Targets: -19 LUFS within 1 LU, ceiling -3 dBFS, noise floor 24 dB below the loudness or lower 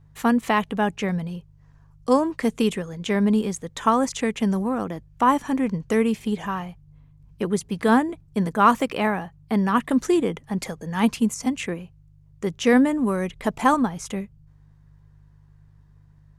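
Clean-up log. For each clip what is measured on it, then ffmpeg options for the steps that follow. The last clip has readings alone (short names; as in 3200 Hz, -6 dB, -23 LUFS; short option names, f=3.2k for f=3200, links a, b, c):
hum 50 Hz; harmonics up to 150 Hz; hum level -51 dBFS; loudness -23.0 LUFS; peak -4.5 dBFS; loudness target -19.0 LUFS
-> -af "bandreject=f=50:t=h:w=4,bandreject=f=100:t=h:w=4,bandreject=f=150:t=h:w=4"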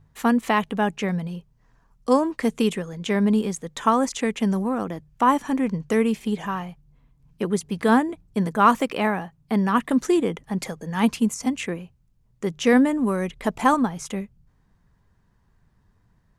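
hum none; loudness -23.0 LUFS; peak -4.5 dBFS; loudness target -19.0 LUFS
-> -af "volume=4dB,alimiter=limit=-3dB:level=0:latency=1"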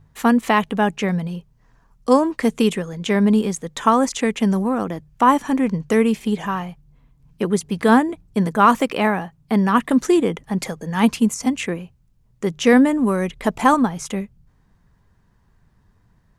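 loudness -19.5 LUFS; peak -3.0 dBFS; noise floor -59 dBFS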